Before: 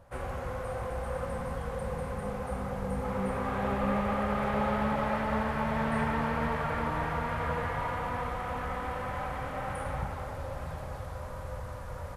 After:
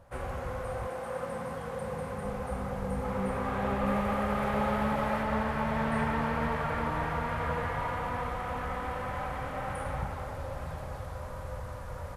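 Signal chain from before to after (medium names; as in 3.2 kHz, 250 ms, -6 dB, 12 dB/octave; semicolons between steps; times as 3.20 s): 0.88–2.23 s: high-pass 200 Hz -> 84 Hz 12 dB/octave; 3.86–5.23 s: treble shelf 8.2 kHz +6.5 dB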